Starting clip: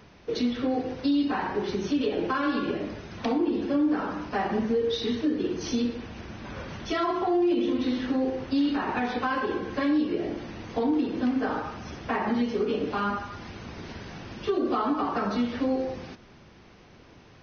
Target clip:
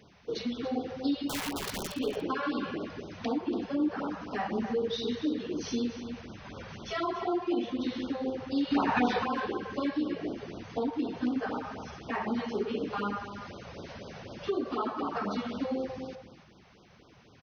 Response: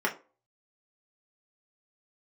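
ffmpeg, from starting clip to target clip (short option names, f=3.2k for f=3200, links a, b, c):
-filter_complex "[0:a]highpass=f=87:p=1,asettb=1/sr,asplit=3[a][b][c];[a]atrim=end=1.294[d];[b]atrim=start=1.29:end=1.92,asetpts=PTS-STARTPTS,afade=t=in:d=0.004:c=qsin,afade=t=out:st=0.626:d=0.004:c=qsin,aeval=exprs='(mod(18.8*val(0)+1,2)-1)/18.8':c=same[e];[c]atrim=start=1.916[f];[d][e]acrossfade=d=0.004:c1=hsin:c2=qsin[g];[g][f]acrossfade=d=0.004:c1=qsin:c2=hsin,asplit=3[h][i][j];[h]afade=t=out:st=8.7:d=0.02[k];[i]acontrast=69,afade=t=in:st=8.7:d=0.02,afade=t=out:st=9.22:d=0.02[l];[j]afade=t=in:st=9.22:d=0.02[m];[k][l][m]amix=inputs=3:normalize=0,asettb=1/sr,asplit=3[n][o][p];[n]atrim=end=13.444[q];[o]atrim=start=13.44:end=14.49,asetpts=PTS-STARTPTS,afade=t=in:d=0.004:c=qsin,afade=t=out:st=1.046:d=0.004:c=qsin,equalizer=f=560:w=2.7:g=10[r];[p]atrim=start=14.486[s];[q][r]acrossfade=d=0.004:c1=hsin:c2=qsin[t];[t][s]acrossfade=d=0.004:c1=qsin:c2=hsin,asplit=2[u][v];[v]adelay=285.7,volume=-9dB,highshelf=f=4k:g=-6.43[w];[u][w]amix=inputs=2:normalize=0,afftfilt=real='re*(1-between(b*sr/1024,260*pow(2200/260,0.5+0.5*sin(2*PI*4*pts/sr))/1.41,260*pow(2200/260,0.5+0.5*sin(2*PI*4*pts/sr))*1.41))':imag='im*(1-between(b*sr/1024,260*pow(2200/260,0.5+0.5*sin(2*PI*4*pts/sr))/1.41,260*pow(2200/260,0.5+0.5*sin(2*PI*4*pts/sr))*1.41))':win_size=1024:overlap=0.75,volume=-4dB"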